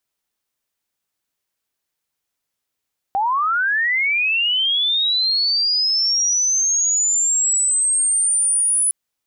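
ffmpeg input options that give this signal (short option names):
-f lavfi -i "aevalsrc='pow(10,(-16+1.5*t/5.76)/20)*sin(2*PI*(760*t+9240*t*t/(2*5.76)))':d=5.76:s=44100"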